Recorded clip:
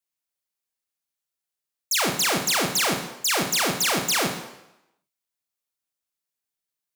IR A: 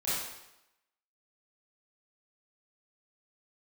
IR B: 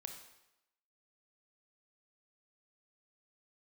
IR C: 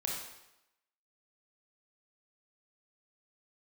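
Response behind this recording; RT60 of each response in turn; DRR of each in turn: B; 0.90, 0.90, 0.90 s; -12.0, 4.0, -2.5 dB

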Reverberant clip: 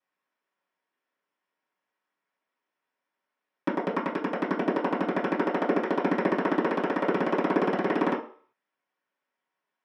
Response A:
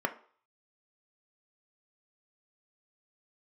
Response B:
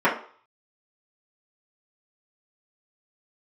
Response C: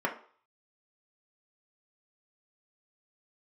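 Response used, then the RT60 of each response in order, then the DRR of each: B; 0.45, 0.45, 0.45 s; 5.0, -9.0, -1.0 dB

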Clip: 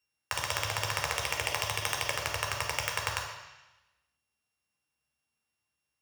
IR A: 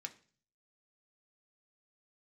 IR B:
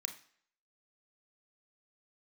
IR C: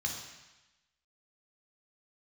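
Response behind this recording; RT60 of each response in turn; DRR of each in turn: C; 0.45, 0.60, 1.0 s; 5.0, 6.0, 0.0 dB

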